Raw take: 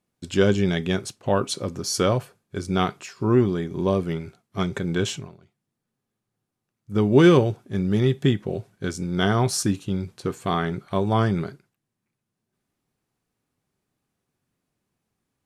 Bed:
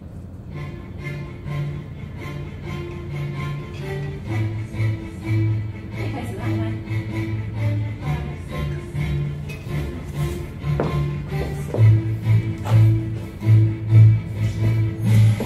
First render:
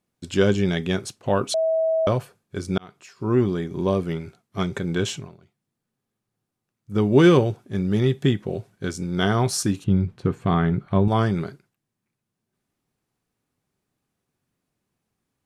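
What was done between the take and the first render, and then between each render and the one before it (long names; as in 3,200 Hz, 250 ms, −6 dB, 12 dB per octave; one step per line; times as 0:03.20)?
0:01.54–0:02.07: beep over 646 Hz −18 dBFS
0:02.78–0:03.47: fade in linear
0:09.84–0:11.08: bass and treble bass +9 dB, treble −14 dB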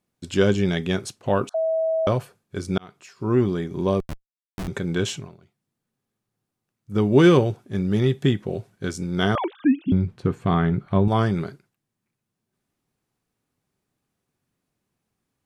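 0:01.49–0:02.07: elliptic band-pass filter 650–1,500 Hz
0:04.00–0:04.68: comparator with hysteresis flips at −21 dBFS
0:09.35–0:09.92: three sine waves on the formant tracks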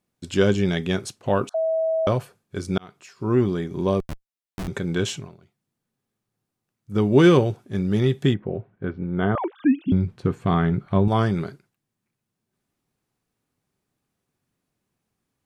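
0:08.34–0:09.56: Gaussian smoothing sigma 4 samples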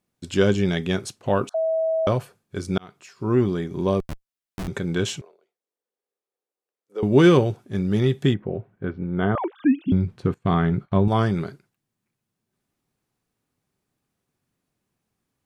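0:05.21–0:07.03: four-pole ladder high-pass 410 Hz, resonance 60%
0:10.34–0:10.92: downward expander −37 dBFS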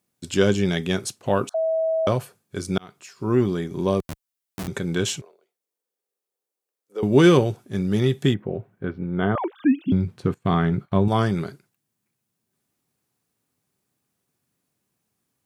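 high-pass filter 78 Hz
high-shelf EQ 6,100 Hz +8.5 dB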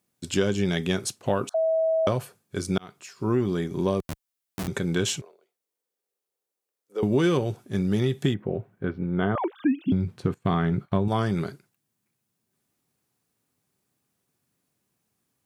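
downward compressor 5 to 1, threshold −19 dBFS, peak gain reduction 8.5 dB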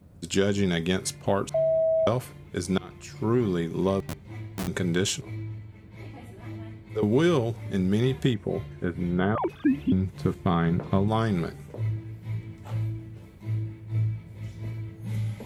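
mix in bed −15.5 dB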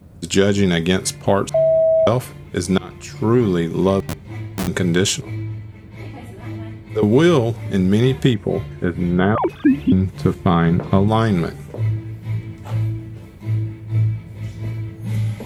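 level +8.5 dB
brickwall limiter −1 dBFS, peak gain reduction 1 dB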